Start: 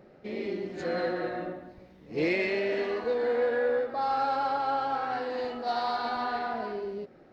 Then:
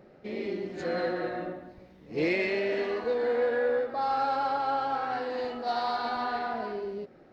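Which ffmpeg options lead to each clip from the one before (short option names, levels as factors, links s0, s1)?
-af anull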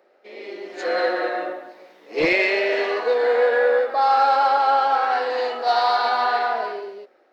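-filter_complex "[0:a]acrossover=split=390|1100[s0][s1][s2];[s0]acrusher=bits=3:mix=0:aa=0.5[s3];[s3][s1][s2]amix=inputs=3:normalize=0,dynaudnorm=f=150:g=9:m=3.76"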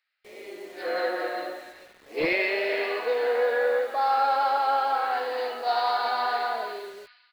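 -filter_complex "[0:a]aresample=11025,aresample=44100,acrossover=split=1800[s0][s1];[s0]acrusher=bits=7:mix=0:aa=0.000001[s2];[s1]aecho=1:1:398|796|1194:0.501|0.0802|0.0128[s3];[s2][s3]amix=inputs=2:normalize=0,volume=0.501"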